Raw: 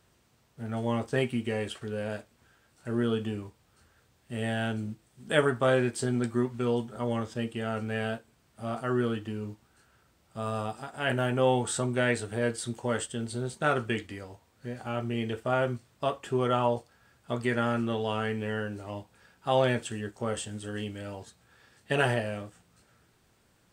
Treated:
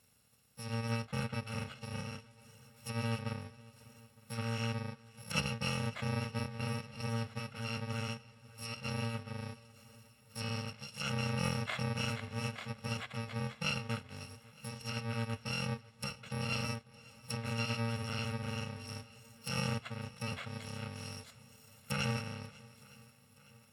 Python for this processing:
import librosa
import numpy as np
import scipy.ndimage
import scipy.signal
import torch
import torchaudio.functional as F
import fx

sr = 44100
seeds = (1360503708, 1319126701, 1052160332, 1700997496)

p1 = fx.bit_reversed(x, sr, seeds[0], block=128)
p2 = scipy.signal.sosfilt(scipy.signal.butter(2, 91.0, 'highpass', fs=sr, output='sos'), p1)
p3 = fx.notch(p2, sr, hz=6300.0, q=12.0)
p4 = fx.level_steps(p3, sr, step_db=11)
p5 = p3 + (p4 * librosa.db_to_amplitude(-2.0))
p6 = fx.env_lowpass_down(p5, sr, base_hz=2800.0, full_db=-28.0)
p7 = p6 + fx.echo_swing(p6, sr, ms=912, ratio=1.5, feedback_pct=57, wet_db=-22.5, dry=0)
y = p7 * librosa.db_to_amplitude(-3.0)